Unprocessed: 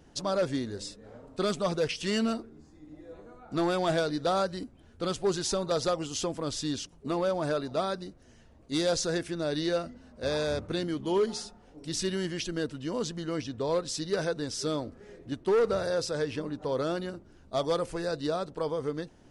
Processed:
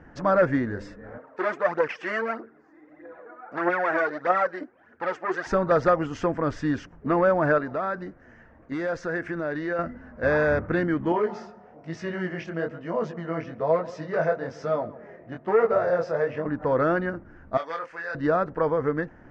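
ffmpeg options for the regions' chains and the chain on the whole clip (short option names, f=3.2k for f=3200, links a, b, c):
-filter_complex "[0:a]asettb=1/sr,asplit=3[a][b][c];[a]atrim=end=1.184[d];[b]atrim=start=1.18:end=5.47,asetpts=PTS-STARTPTS,afade=t=in:d=0.004:c=qsin,afade=t=out:st=4.286:d=0.004:c=qsin,aeval=exprs='(tanh(25.1*val(0)+0.65)-tanh(0.65))/25.1':c=same,aphaser=in_gain=1:out_gain=1:delay=3.5:decay=0.57:speed=1.6:type=triangular,highpass=380,lowpass=8k[e];[c]atrim=start=5.466[f];[d][e]acrossfade=d=0.004:c1=hsin:c2=qsin[g];[g][f]acrossfade=d=0.004:c1=qsin:c2=hsin,asettb=1/sr,asplit=3[h][i][j];[h]atrim=end=7.584[k];[i]atrim=start=7.58:end=9.79,asetpts=PTS-STARTPTS,afade=t=in:d=0.004:c=qsin,afade=t=out:st=2.206:d=0.004:c=qsin,lowshelf=f=150:g=-7.5,acompressor=threshold=-33dB:ratio=4:attack=3.2:release=140:knee=1:detection=peak[l];[j]atrim=start=9.786[m];[k][l]acrossfade=d=0.004:c1=hsin:c2=qsin[n];[n][m]acrossfade=d=0.004:c1=qsin:c2=hsin,asettb=1/sr,asplit=3[o][p][q];[o]atrim=end=11.124[r];[p]atrim=start=11.12:end=16.46,asetpts=PTS-STARTPTS,afade=t=in:d=0.004:c=qsin,afade=t=out:st=5.336:d=0.004:c=qsin,highpass=140,equalizer=f=290:t=q:w=4:g=-9,equalizer=f=670:t=q:w=4:g=8,equalizer=f=1.6k:t=q:w=4:g=-7,lowpass=f=7.4k:w=0.5412,lowpass=f=7.4k:w=1.3066,asplit=2[s][t];[t]adelay=141,lowpass=f=1.4k:p=1,volume=-16dB,asplit=2[u][v];[v]adelay=141,lowpass=f=1.4k:p=1,volume=0.45,asplit=2[w][x];[x]adelay=141,lowpass=f=1.4k:p=1,volume=0.45,asplit=2[y][z];[z]adelay=141,lowpass=f=1.4k:p=1,volume=0.45[aa];[s][u][w][y][aa]amix=inputs=5:normalize=0,atrim=end_sample=235494,flanger=delay=17.5:depth=7.6:speed=1.1[ab];[q]atrim=start=16.456[ac];[r][ab]acrossfade=d=0.004:c1=hsin:c2=qsin[ad];[ad][ac]acrossfade=d=0.004:c1=qsin:c2=hsin,asettb=1/sr,asplit=3[ae][af][ag];[ae]atrim=end=17.574[ah];[af]atrim=start=17.57:end=18.15,asetpts=PTS-STARTPTS,afade=t=in:d=0.004:c=qsin,afade=t=out:st=0.576:d=0.004:c=qsin,bandpass=f=4k:t=q:w=0.77,asplit=2[ai][aj];[aj]adelay=25,volume=-5dB[ak];[ai][ak]amix=inputs=2:normalize=0,atrim=end_sample=25578[al];[ag]atrim=start=18.146[am];[ah][al]acrossfade=d=0.004:c1=hsin:c2=qsin[an];[an][am]acrossfade=d=0.004:c1=qsin:c2=hsin,lowpass=f=5.9k:w=0.5412,lowpass=f=5.9k:w=1.3066,highshelf=f=2.6k:t=q:w=3:g=-14,bandreject=f=400:w=12,volume=7dB"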